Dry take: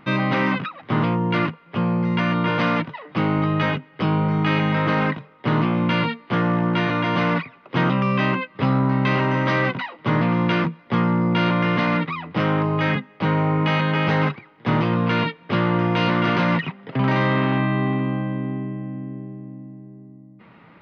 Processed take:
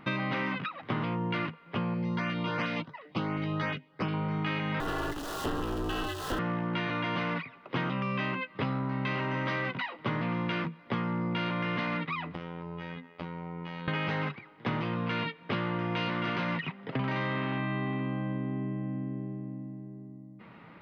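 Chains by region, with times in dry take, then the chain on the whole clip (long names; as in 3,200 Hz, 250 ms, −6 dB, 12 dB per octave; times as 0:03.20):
0:01.94–0:04.14: high-shelf EQ 3,400 Hz +6.5 dB + auto-filter notch saw up 2.8 Hz 780–4,700 Hz + expander for the loud parts, over −34 dBFS
0:04.80–0:06.39: converter with a step at zero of −24.5 dBFS + Butterworth band-reject 2,200 Hz, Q 2.4 + ring modulation 140 Hz
0:12.34–0:13.88: phases set to zero 85.2 Hz + downward compressor 10 to 1, threshold −31 dBFS + highs frequency-modulated by the lows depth 0.12 ms
whole clip: dynamic equaliser 2,600 Hz, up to +4 dB, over −36 dBFS, Q 0.74; downward compressor 5 to 1, threshold −27 dBFS; level −2.5 dB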